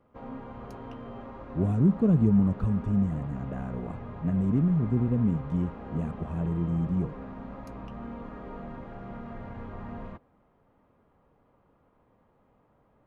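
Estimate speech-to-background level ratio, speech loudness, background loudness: 14.5 dB, −27.5 LKFS, −42.0 LKFS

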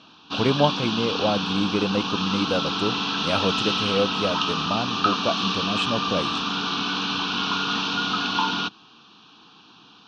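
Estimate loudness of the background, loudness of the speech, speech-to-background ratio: −24.5 LKFS, −26.5 LKFS, −2.0 dB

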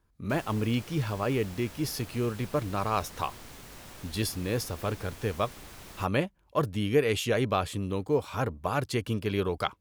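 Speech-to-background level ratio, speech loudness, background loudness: 16.0 dB, −30.5 LKFS, −46.5 LKFS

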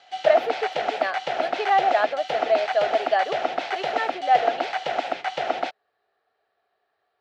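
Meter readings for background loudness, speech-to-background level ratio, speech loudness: −27.5 LKFS, 3.0 dB, −24.5 LKFS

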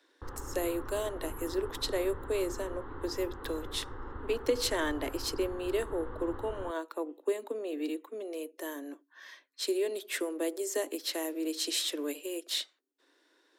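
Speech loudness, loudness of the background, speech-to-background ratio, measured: −34.5 LKFS, −44.5 LKFS, 10.0 dB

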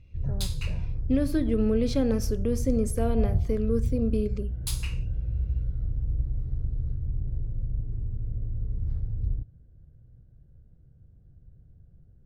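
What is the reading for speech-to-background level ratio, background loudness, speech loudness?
3.5 dB, −32.5 LKFS, −29.0 LKFS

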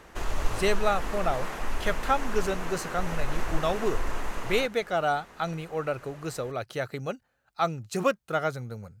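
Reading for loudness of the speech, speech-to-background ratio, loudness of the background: −30.0 LKFS, 5.5 dB, −35.5 LKFS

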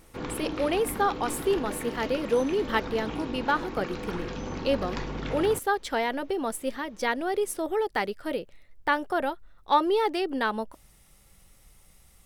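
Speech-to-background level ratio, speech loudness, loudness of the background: 7.5 dB, −28.5 LKFS, −36.0 LKFS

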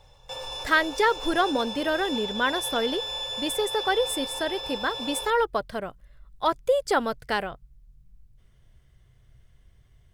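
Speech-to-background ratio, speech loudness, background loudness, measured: 5.5 dB, −26.5 LKFS, −32.0 LKFS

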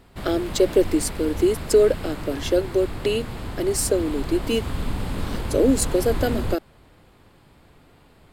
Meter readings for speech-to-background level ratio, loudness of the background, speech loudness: 9.5 dB, −32.0 LKFS, −22.5 LKFS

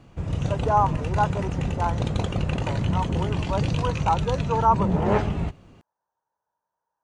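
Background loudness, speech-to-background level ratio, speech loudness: −26.5 LKFS, −0.5 dB, −27.0 LKFS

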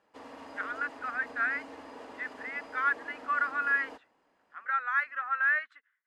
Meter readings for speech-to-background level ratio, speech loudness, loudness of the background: 16.0 dB, −31.0 LKFS, −47.0 LKFS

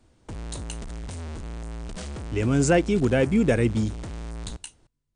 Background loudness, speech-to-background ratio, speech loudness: −37.0 LKFS, 14.0 dB, −23.0 LKFS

